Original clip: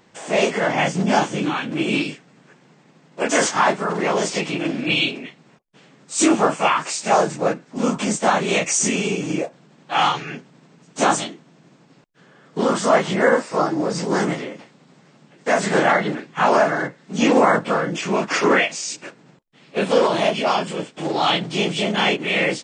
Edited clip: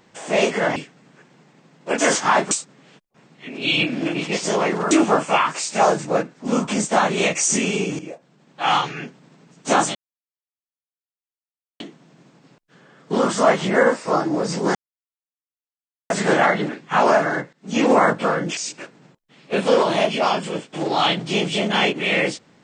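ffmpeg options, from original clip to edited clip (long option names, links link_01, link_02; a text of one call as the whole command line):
ffmpeg -i in.wav -filter_complex "[0:a]asplit=10[link_01][link_02][link_03][link_04][link_05][link_06][link_07][link_08][link_09][link_10];[link_01]atrim=end=0.762[link_11];[link_02]atrim=start=2.068:end=3.822[link_12];[link_03]atrim=start=3.818:end=6.222,asetpts=PTS-STARTPTS,areverse[link_13];[link_04]atrim=start=6.218:end=9.3,asetpts=PTS-STARTPTS,afade=type=out:start_time=3.078:duration=0.004:curve=hsin:silence=0.177828[link_14];[link_05]atrim=start=9.3:end=11.26,asetpts=PTS-STARTPTS,afade=type=in:duration=0.8:silence=0.177828,afade=type=out:start_time=1.956:duration=0.004:curve=hsin,apad=pad_dur=1.85[link_15];[link_06]atrim=start=11.26:end=14.21,asetpts=PTS-STARTPTS,afade=type=in:duration=0.004:curve=hsin,afade=type=out:start_time=2.946:duration=0.004:curve=hsin[link_16];[link_07]atrim=start=14.21:end=15.56,asetpts=PTS-STARTPTS,volume=0[link_17];[link_08]atrim=start=15.56:end=16.99,asetpts=PTS-STARTPTS,afade=type=in:duration=0.004:curve=hsin,afade=type=out:start_time=1.426:duration=0.004:curve=hsin:silence=0.125893[link_18];[link_09]atrim=start=16.99:end=18.032,asetpts=PTS-STARTPTS,afade=type=in:duration=0.52:curve=qsin:silence=0.125893[link_19];[link_10]atrim=start=18.808[link_20];[link_11][link_12]acrossfade=duration=0.004:curve1=hsin:curve2=hsin[link_21];[link_21][link_13]acrossfade=duration=0.004:curve1=hsin:curve2=hsin[link_22];[link_14][link_15][link_16][link_17][link_18][link_19]concat=n=6:v=0:a=1[link_23];[link_22][link_23]acrossfade=duration=0.004:curve1=hsin:curve2=hsin[link_24];[link_24][link_20]acrossfade=duration=0.004:curve1=hsin:curve2=hsin" out.wav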